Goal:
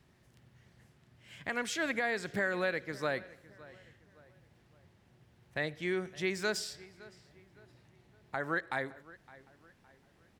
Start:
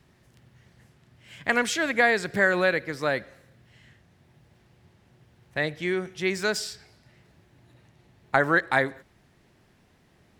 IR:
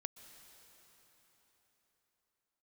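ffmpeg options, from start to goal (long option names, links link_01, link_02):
-filter_complex "[0:a]alimiter=limit=-15.5dB:level=0:latency=1:release=457,asplit=2[link_01][link_02];[link_02]adelay=563,lowpass=frequency=3300:poles=1,volume=-20dB,asplit=2[link_03][link_04];[link_04]adelay=563,lowpass=frequency=3300:poles=1,volume=0.41,asplit=2[link_05][link_06];[link_06]adelay=563,lowpass=frequency=3300:poles=1,volume=0.41[link_07];[link_03][link_05][link_07]amix=inputs=3:normalize=0[link_08];[link_01][link_08]amix=inputs=2:normalize=0,volume=-5.5dB"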